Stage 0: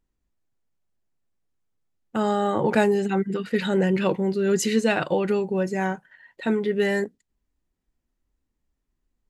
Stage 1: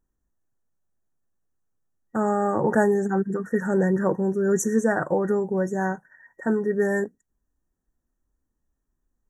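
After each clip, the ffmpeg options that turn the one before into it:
-af "afftfilt=real='re*(1-between(b*sr/4096,1900,5500))':imag='im*(1-between(b*sr/4096,1900,5500))':win_size=4096:overlap=0.75"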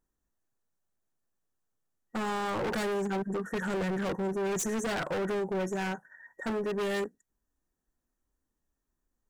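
-af "aeval=exprs='(tanh(12.6*val(0)+0.15)-tanh(0.15))/12.6':c=same,lowshelf=f=260:g=-7,aeval=exprs='0.0447*(abs(mod(val(0)/0.0447+3,4)-2)-1)':c=same"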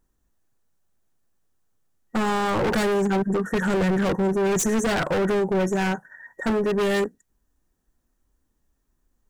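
-af "lowshelf=f=180:g=5,volume=8dB"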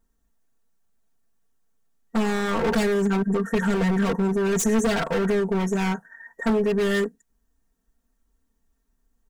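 -af "aecho=1:1:4.4:0.8,volume=-3dB"

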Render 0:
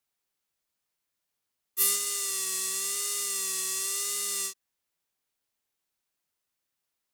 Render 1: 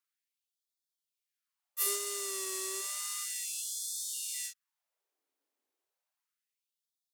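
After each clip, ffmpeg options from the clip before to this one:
-af "tiltshelf=f=900:g=7,afftfilt=real='re*gte(b*sr/1024,220*pow(3300/220,0.5+0.5*sin(2*PI*0.32*pts/sr)))':imag='im*gte(b*sr/1024,220*pow(3300/220,0.5+0.5*sin(2*PI*0.32*pts/sr)))':win_size=1024:overlap=0.75"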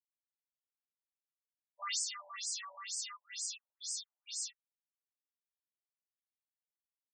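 -af "agate=range=-33dB:threshold=-33dB:ratio=3:detection=peak,lowpass=8.4k,afftfilt=real='re*between(b*sr/1024,690*pow(6600/690,0.5+0.5*sin(2*PI*2.1*pts/sr))/1.41,690*pow(6600/690,0.5+0.5*sin(2*PI*2.1*pts/sr))*1.41)':imag='im*between(b*sr/1024,690*pow(6600/690,0.5+0.5*sin(2*PI*2.1*pts/sr))/1.41,690*pow(6600/690,0.5+0.5*sin(2*PI*2.1*pts/sr))*1.41)':win_size=1024:overlap=0.75,volume=7.5dB"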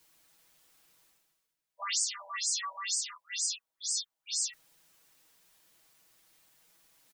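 -af "aecho=1:1:6.2:0.66,areverse,acompressor=mode=upward:threshold=-53dB:ratio=2.5,areverse,volume=6.5dB"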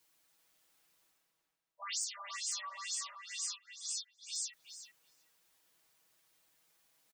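-filter_complex "[0:a]lowshelf=f=170:g=-5.5,asoftclip=type=hard:threshold=-21.5dB,asplit=2[a][b];[b]adelay=377,lowpass=f=2.5k:p=1,volume=-4dB,asplit=2[c][d];[d]adelay=377,lowpass=f=2.5k:p=1,volume=0.18,asplit=2[e][f];[f]adelay=377,lowpass=f=2.5k:p=1,volume=0.18[g];[c][e][g]amix=inputs=3:normalize=0[h];[a][h]amix=inputs=2:normalize=0,volume=-7dB"

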